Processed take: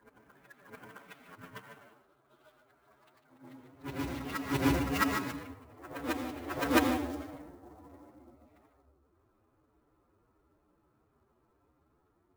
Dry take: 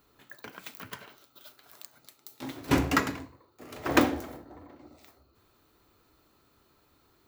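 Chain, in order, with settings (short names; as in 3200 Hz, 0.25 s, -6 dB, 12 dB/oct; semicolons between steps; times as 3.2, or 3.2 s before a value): short-time reversal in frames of 0.177 s; de-hum 97.55 Hz, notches 13; time stretch by phase-locked vocoder 1.7×; on a send: reverse echo 0.664 s -9 dB; on the sum: low-pass opened by the level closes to 1200 Hz, open at -30.5 dBFS; clock jitter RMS 0.022 ms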